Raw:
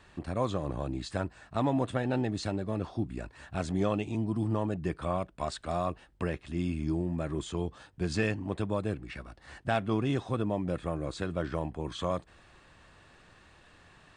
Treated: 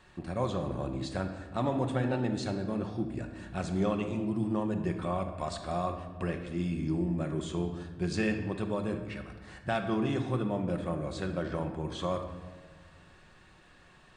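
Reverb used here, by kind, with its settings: simulated room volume 1200 m³, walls mixed, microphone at 0.99 m; trim -2 dB

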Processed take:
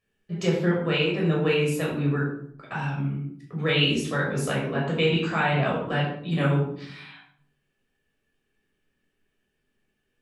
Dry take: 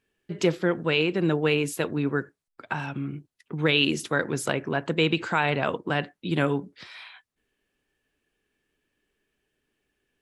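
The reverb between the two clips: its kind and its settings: simulated room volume 1000 m³, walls furnished, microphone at 6 m; trim -7.5 dB

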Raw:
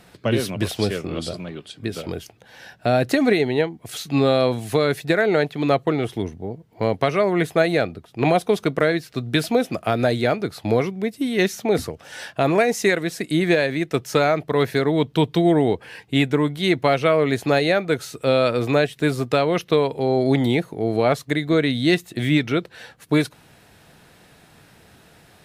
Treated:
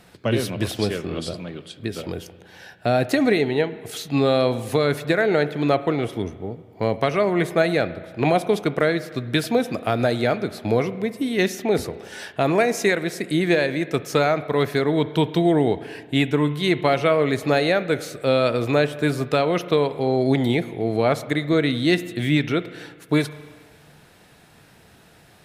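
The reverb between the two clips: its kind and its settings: spring tank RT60 1.6 s, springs 34/54 ms, chirp 75 ms, DRR 13.5 dB; trim -1 dB

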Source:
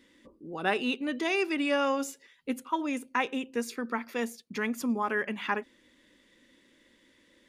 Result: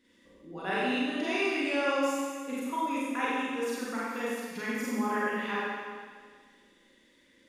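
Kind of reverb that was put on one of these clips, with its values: Schroeder reverb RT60 1.7 s, combs from 32 ms, DRR -8.5 dB; trim -9 dB

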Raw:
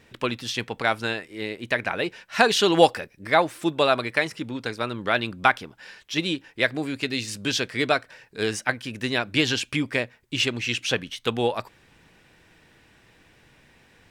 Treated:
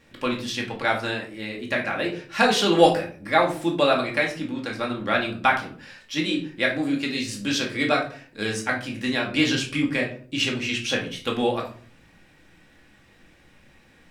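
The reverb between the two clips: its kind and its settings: simulated room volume 390 m³, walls furnished, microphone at 2.3 m; trim -3.5 dB

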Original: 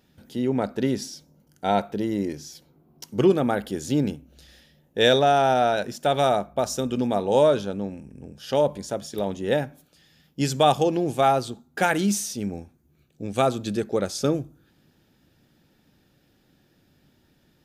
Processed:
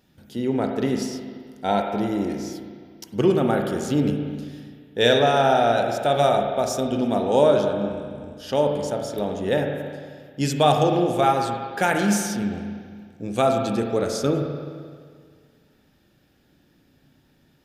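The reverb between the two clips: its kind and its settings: spring tank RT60 1.9 s, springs 34/43 ms, chirp 70 ms, DRR 2.5 dB

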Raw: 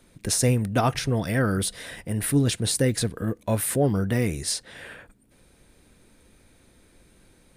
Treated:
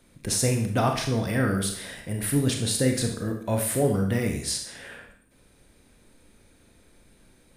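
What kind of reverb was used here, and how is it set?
Schroeder reverb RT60 0.6 s, combs from 27 ms, DRR 3 dB; trim -2.5 dB

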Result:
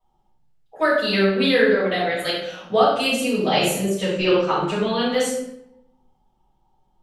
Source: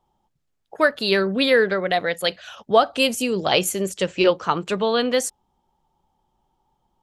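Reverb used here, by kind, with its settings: simulated room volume 220 m³, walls mixed, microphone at 6.2 m; trim -15 dB

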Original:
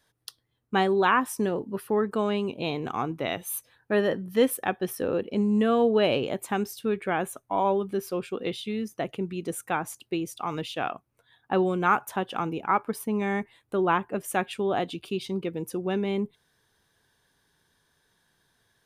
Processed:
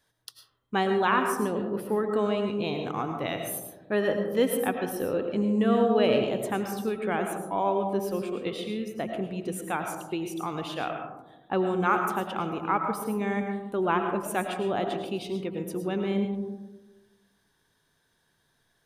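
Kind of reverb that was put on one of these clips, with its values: algorithmic reverb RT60 1.1 s, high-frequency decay 0.25×, pre-delay 65 ms, DRR 4.5 dB; trim -2.5 dB

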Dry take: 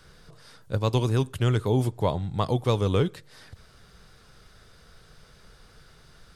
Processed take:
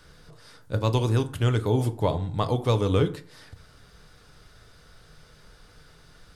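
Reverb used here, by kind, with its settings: FDN reverb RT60 0.48 s, low-frequency decay 1.05×, high-frequency decay 0.55×, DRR 8.5 dB

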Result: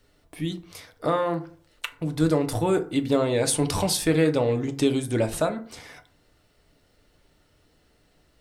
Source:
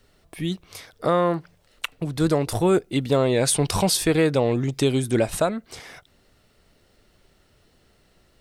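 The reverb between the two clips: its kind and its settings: FDN reverb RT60 0.45 s, low-frequency decay 1.1×, high-frequency decay 0.5×, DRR 6 dB; trim -3.5 dB

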